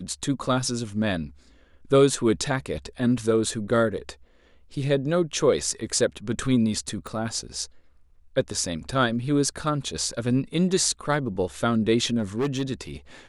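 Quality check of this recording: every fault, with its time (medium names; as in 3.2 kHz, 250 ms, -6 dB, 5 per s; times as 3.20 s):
7.07 s: pop
12.18–12.63 s: clipped -20.5 dBFS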